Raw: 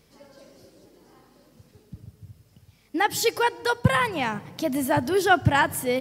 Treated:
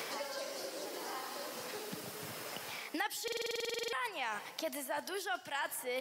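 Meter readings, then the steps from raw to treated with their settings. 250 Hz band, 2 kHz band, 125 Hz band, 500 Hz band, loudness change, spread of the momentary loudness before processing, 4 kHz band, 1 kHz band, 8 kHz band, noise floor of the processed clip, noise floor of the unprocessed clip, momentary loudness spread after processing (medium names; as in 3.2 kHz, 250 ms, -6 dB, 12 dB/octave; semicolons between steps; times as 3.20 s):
-19.0 dB, -13.0 dB, -29.5 dB, -13.5 dB, -16.0 dB, 9 LU, -8.0 dB, -15.5 dB, -8.5 dB, -50 dBFS, -60 dBFS, 6 LU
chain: high-pass 660 Hz 12 dB/octave; reverse; compression, threshold -35 dBFS, peak gain reduction 19.5 dB; reverse; buffer glitch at 3.23 s, samples 2048, times 14; three bands compressed up and down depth 100%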